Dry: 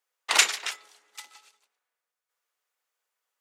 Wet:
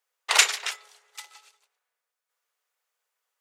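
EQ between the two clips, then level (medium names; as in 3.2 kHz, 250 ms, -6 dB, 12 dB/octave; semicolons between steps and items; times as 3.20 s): brick-wall FIR high-pass 360 Hz; +1.5 dB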